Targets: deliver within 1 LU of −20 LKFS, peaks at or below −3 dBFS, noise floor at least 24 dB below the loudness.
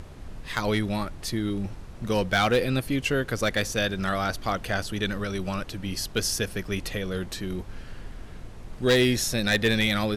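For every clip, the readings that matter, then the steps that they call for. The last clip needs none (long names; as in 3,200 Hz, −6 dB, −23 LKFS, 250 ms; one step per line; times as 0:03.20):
share of clipped samples 0.3%; peaks flattened at −15.0 dBFS; background noise floor −42 dBFS; target noise floor −51 dBFS; integrated loudness −26.5 LKFS; sample peak −15.0 dBFS; target loudness −20.0 LKFS
→ clipped peaks rebuilt −15 dBFS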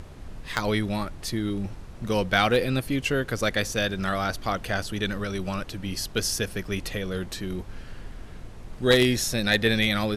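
share of clipped samples 0.0%; background noise floor −42 dBFS; target noise floor −50 dBFS
→ noise reduction from a noise print 8 dB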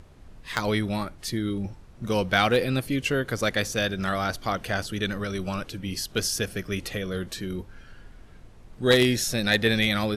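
background noise floor −49 dBFS; target noise floor −50 dBFS
→ noise reduction from a noise print 6 dB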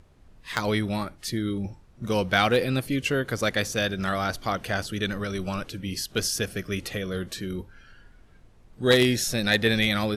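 background noise floor −54 dBFS; integrated loudness −26.0 LKFS; sample peak −6.0 dBFS; target loudness −20.0 LKFS
→ level +6 dB
brickwall limiter −3 dBFS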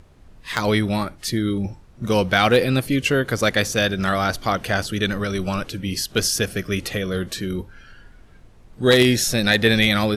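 integrated loudness −20.5 LKFS; sample peak −3.0 dBFS; background noise floor −48 dBFS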